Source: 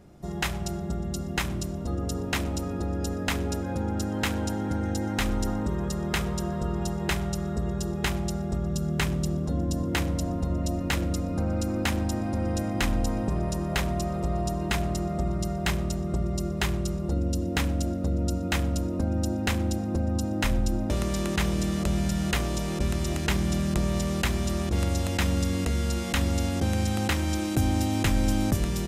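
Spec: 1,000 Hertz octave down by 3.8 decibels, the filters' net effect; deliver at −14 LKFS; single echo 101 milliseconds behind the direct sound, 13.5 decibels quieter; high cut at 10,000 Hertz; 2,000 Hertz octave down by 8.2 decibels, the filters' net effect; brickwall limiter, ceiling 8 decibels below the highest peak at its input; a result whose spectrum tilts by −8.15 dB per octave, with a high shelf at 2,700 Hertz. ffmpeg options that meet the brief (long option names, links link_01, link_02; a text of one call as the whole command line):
ffmpeg -i in.wav -af "lowpass=10000,equalizer=frequency=1000:width_type=o:gain=-3,equalizer=frequency=2000:width_type=o:gain=-6,highshelf=frequency=2700:gain=-8,alimiter=limit=-22dB:level=0:latency=1,aecho=1:1:101:0.211,volume=17dB" out.wav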